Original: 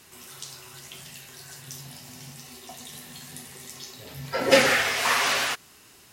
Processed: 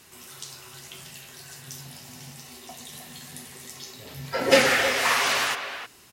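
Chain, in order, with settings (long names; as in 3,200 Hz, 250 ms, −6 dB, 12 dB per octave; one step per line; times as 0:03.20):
far-end echo of a speakerphone 310 ms, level −8 dB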